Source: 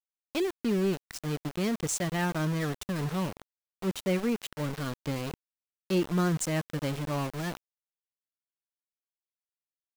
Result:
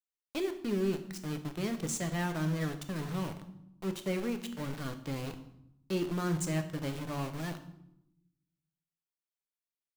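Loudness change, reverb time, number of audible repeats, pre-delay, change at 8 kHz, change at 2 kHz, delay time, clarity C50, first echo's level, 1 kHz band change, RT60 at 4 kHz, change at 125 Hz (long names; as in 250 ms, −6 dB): −4.0 dB, 0.85 s, no echo audible, 3 ms, −4.5 dB, −4.5 dB, no echo audible, 11.5 dB, no echo audible, −5.0 dB, 0.60 s, −3.5 dB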